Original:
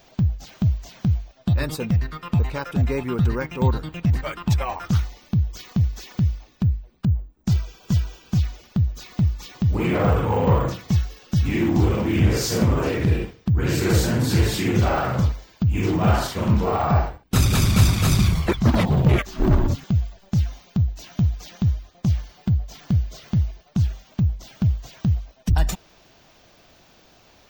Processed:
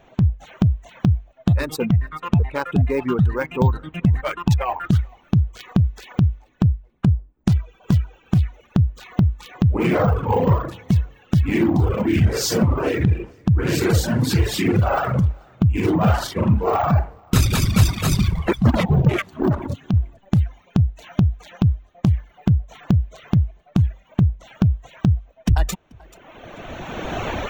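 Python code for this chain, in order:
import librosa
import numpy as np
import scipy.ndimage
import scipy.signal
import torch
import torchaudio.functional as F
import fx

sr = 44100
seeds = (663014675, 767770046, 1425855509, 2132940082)

p1 = fx.wiener(x, sr, points=9)
p2 = fx.recorder_agc(p1, sr, target_db=-12.0, rise_db_per_s=19.0, max_gain_db=30)
p3 = fx.bessel_highpass(p2, sr, hz=150.0, order=2, at=(19.1, 19.94))
p4 = p3 + fx.echo_feedback(p3, sr, ms=435, feedback_pct=18, wet_db=-19.5, dry=0)
p5 = fx.dereverb_blind(p4, sr, rt60_s=1.5)
y = p5 * 10.0 ** (2.5 / 20.0)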